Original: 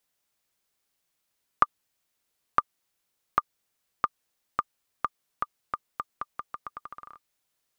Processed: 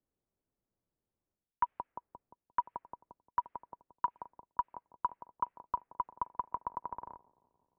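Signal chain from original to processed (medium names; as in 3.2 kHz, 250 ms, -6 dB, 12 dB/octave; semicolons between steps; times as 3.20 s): feedback echo behind a band-pass 175 ms, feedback 71%, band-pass 610 Hz, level -21 dB; level-controlled noise filter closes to 540 Hz, open at -27 dBFS; mistuned SSB -230 Hz 180–2700 Hz; reverse; compression 6:1, threshold -34 dBFS, peak gain reduction 17 dB; reverse; trim +4.5 dB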